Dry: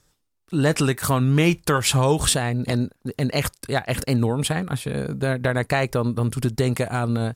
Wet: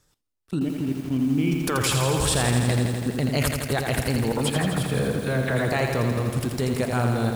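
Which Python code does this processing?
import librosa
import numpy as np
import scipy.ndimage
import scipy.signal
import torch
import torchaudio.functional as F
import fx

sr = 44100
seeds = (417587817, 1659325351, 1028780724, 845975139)

y = fx.formant_cascade(x, sr, vowel='i', at=(0.58, 1.51), fade=0.02)
y = fx.dispersion(y, sr, late='lows', ms=56.0, hz=1900.0, at=(4.32, 5.72))
y = fx.level_steps(y, sr, step_db=14)
y = fx.echo_crushed(y, sr, ms=83, feedback_pct=80, bits=8, wet_db=-5.0)
y = y * librosa.db_to_amplitude(4.0)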